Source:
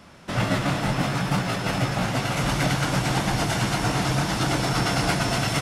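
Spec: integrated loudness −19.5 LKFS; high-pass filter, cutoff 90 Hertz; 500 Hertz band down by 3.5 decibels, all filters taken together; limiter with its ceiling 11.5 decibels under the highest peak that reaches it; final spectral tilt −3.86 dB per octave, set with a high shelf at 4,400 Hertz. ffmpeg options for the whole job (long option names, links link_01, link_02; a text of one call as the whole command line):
ffmpeg -i in.wav -af "highpass=90,equalizer=frequency=500:width_type=o:gain=-5,highshelf=frequency=4400:gain=3.5,volume=10.5dB,alimiter=limit=-11.5dB:level=0:latency=1" out.wav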